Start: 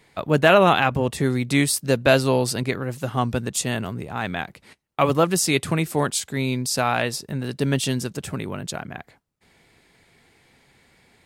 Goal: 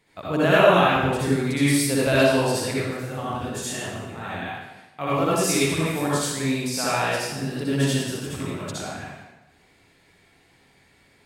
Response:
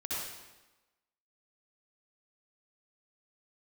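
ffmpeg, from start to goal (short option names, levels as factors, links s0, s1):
-filter_complex "[0:a]asettb=1/sr,asplit=3[s0][s1][s2];[s0]atrim=end=2.994[s3];[s1]atrim=start=2.99:end=5.22,asetpts=PTS-STARTPTS,afade=t=in:d=0.004:c=qsin,afade=t=out:st=2.226:d=0.004:c=qsin,flanger=delay=19.5:depth=2.5:speed=2.1[s4];[s2]atrim=start=5.216[s5];[s3][s4]acrossfade=d=0.004:c1=hsin:c2=qsin[s6];[s6][s5]acrossfade=d=0.004:c1=qsin:c2=hsin[s7];[1:a]atrim=start_sample=2205[s8];[s7][s8]afir=irnorm=-1:irlink=0,volume=0.631"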